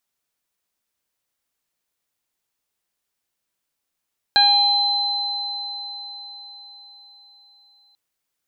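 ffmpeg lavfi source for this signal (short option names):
-f lavfi -i "aevalsrc='0.15*pow(10,-3*t/3.94)*sin(2*PI*812*t)+0.15*pow(10,-3*t/0.31)*sin(2*PI*1624*t)+0.0376*pow(10,-3*t/0.95)*sin(2*PI*2436*t)+0.0316*pow(10,-3*t/1.69)*sin(2*PI*3248*t)+0.251*pow(10,-3*t/4.95)*sin(2*PI*4060*t)':d=3.59:s=44100"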